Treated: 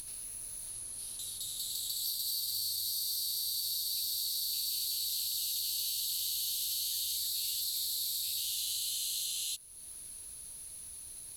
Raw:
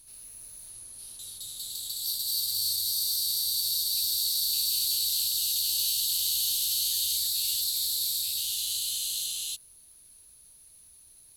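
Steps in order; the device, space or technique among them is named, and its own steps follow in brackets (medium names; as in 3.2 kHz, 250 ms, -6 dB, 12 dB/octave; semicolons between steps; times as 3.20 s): upward and downward compression (upward compressor, threshold -37 dBFS; compression, threshold -32 dBFS, peak gain reduction 8 dB)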